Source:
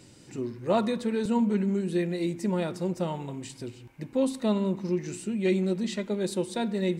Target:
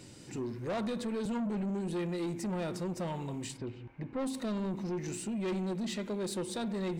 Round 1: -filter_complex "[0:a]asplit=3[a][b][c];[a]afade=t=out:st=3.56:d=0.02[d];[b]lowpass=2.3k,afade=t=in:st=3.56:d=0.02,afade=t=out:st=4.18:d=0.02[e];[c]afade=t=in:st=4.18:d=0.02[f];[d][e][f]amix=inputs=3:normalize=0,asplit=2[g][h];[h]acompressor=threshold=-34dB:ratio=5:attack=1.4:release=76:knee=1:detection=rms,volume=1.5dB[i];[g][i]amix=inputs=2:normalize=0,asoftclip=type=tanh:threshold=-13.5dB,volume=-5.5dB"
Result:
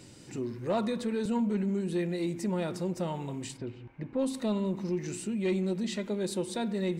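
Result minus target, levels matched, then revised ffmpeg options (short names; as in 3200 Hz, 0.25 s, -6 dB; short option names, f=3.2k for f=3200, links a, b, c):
soft clip: distortion -14 dB
-filter_complex "[0:a]asplit=3[a][b][c];[a]afade=t=out:st=3.56:d=0.02[d];[b]lowpass=2.3k,afade=t=in:st=3.56:d=0.02,afade=t=out:st=4.18:d=0.02[e];[c]afade=t=in:st=4.18:d=0.02[f];[d][e][f]amix=inputs=3:normalize=0,asplit=2[g][h];[h]acompressor=threshold=-34dB:ratio=5:attack=1.4:release=76:knee=1:detection=rms,volume=1.5dB[i];[g][i]amix=inputs=2:normalize=0,asoftclip=type=tanh:threshold=-25dB,volume=-5.5dB"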